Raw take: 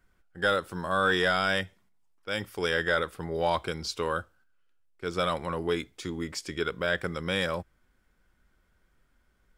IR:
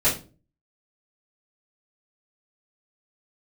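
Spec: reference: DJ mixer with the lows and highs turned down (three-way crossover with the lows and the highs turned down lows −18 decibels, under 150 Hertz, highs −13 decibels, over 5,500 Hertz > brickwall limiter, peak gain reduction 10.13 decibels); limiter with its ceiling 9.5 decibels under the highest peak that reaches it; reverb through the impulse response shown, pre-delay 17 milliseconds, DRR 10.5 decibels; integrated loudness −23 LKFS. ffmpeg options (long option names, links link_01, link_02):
-filter_complex "[0:a]alimiter=level_in=0.5dB:limit=-24dB:level=0:latency=1,volume=-0.5dB,asplit=2[link_01][link_02];[1:a]atrim=start_sample=2205,adelay=17[link_03];[link_02][link_03]afir=irnorm=-1:irlink=0,volume=-25dB[link_04];[link_01][link_04]amix=inputs=2:normalize=0,acrossover=split=150 5500:gain=0.126 1 0.224[link_05][link_06][link_07];[link_05][link_06][link_07]amix=inputs=3:normalize=0,volume=18.5dB,alimiter=limit=-12.5dB:level=0:latency=1"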